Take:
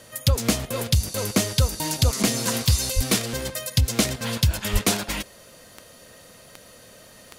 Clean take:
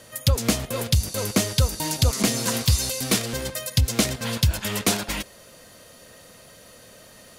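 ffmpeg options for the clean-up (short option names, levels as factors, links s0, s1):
-filter_complex "[0:a]adeclick=t=4,asplit=3[s0][s1][s2];[s0]afade=t=out:st=2.95:d=0.02[s3];[s1]highpass=f=140:w=0.5412,highpass=f=140:w=1.3066,afade=t=in:st=2.95:d=0.02,afade=t=out:st=3.07:d=0.02[s4];[s2]afade=t=in:st=3.07:d=0.02[s5];[s3][s4][s5]amix=inputs=3:normalize=0,asplit=3[s6][s7][s8];[s6]afade=t=out:st=4.72:d=0.02[s9];[s7]highpass=f=140:w=0.5412,highpass=f=140:w=1.3066,afade=t=in:st=4.72:d=0.02,afade=t=out:st=4.84:d=0.02[s10];[s8]afade=t=in:st=4.84:d=0.02[s11];[s9][s10][s11]amix=inputs=3:normalize=0"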